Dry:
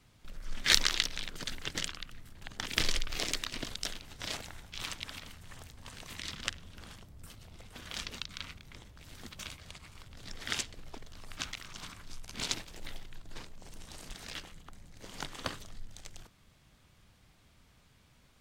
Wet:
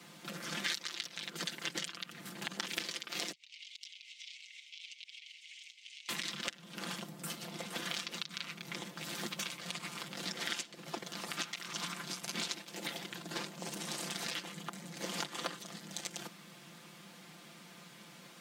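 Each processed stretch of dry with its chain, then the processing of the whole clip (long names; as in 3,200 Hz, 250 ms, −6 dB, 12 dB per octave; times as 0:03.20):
0:03.32–0:06.09: Chebyshev high-pass with heavy ripple 2,100 Hz, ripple 3 dB + high-frequency loss of the air 150 metres + downward compressor, threshold −59 dBFS
whole clip: Butterworth high-pass 160 Hz 48 dB per octave; downward compressor 8 to 1, threshold −48 dBFS; comb filter 5.8 ms; level +11 dB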